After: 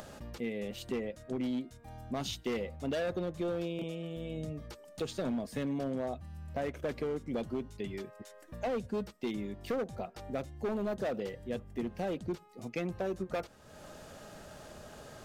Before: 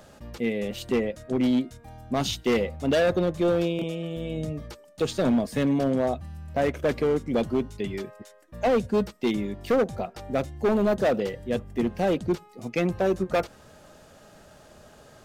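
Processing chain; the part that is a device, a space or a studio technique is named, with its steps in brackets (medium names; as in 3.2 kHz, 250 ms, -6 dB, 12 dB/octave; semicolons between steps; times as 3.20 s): upward and downward compression (upward compressor, threshold -31 dBFS; compression, threshold -23 dBFS, peak gain reduction 4 dB); trim -8 dB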